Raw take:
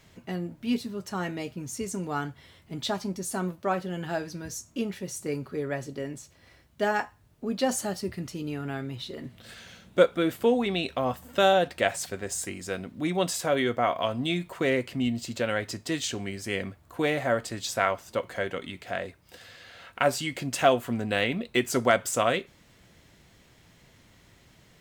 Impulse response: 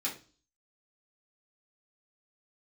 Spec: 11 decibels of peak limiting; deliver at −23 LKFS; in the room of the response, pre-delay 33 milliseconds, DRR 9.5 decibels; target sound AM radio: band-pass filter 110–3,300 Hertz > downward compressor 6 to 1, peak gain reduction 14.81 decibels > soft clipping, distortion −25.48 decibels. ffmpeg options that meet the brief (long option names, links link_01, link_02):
-filter_complex "[0:a]alimiter=limit=-16.5dB:level=0:latency=1,asplit=2[link_01][link_02];[1:a]atrim=start_sample=2205,adelay=33[link_03];[link_02][link_03]afir=irnorm=-1:irlink=0,volume=-13.5dB[link_04];[link_01][link_04]amix=inputs=2:normalize=0,highpass=110,lowpass=3300,acompressor=threshold=-37dB:ratio=6,asoftclip=threshold=-25.5dB,volume=19dB"